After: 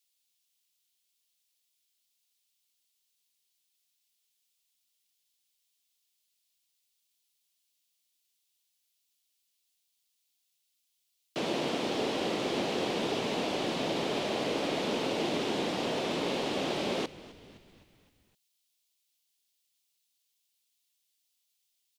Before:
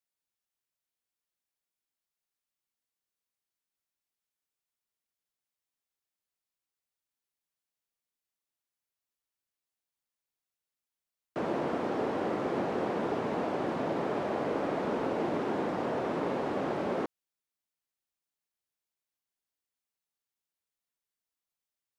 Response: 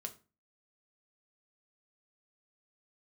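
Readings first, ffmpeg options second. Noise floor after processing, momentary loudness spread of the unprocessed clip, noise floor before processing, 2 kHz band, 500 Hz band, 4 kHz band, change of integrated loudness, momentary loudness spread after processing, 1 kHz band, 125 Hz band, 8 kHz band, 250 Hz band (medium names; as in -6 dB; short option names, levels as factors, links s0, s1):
-78 dBFS, 1 LU, under -85 dBFS, +3.5 dB, -0.5 dB, +15.0 dB, +0.5 dB, 3 LU, -1.5 dB, -0.5 dB, no reading, 0.0 dB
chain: -filter_complex "[0:a]highpass=98,highshelf=f=2200:t=q:w=1.5:g=13,asplit=2[s0][s1];[s1]asplit=5[s2][s3][s4][s5][s6];[s2]adelay=258,afreqshift=-61,volume=0.119[s7];[s3]adelay=516,afreqshift=-122,volume=0.0668[s8];[s4]adelay=774,afreqshift=-183,volume=0.0372[s9];[s5]adelay=1032,afreqshift=-244,volume=0.0209[s10];[s6]adelay=1290,afreqshift=-305,volume=0.0117[s11];[s7][s8][s9][s10][s11]amix=inputs=5:normalize=0[s12];[s0][s12]amix=inputs=2:normalize=0"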